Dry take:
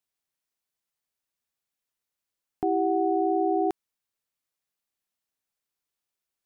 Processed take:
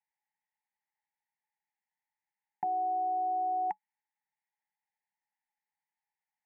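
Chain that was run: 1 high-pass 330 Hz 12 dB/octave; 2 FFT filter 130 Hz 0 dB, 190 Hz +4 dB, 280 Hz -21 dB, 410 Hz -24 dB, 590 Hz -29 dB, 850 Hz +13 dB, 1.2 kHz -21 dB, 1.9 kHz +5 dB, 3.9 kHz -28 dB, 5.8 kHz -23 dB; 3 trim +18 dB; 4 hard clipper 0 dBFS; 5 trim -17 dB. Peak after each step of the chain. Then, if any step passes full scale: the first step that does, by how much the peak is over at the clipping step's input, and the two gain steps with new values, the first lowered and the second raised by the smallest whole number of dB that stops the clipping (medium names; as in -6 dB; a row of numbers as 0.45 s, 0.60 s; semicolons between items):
-18.0 dBFS, -23.0 dBFS, -5.0 dBFS, -5.0 dBFS, -22.0 dBFS; nothing clips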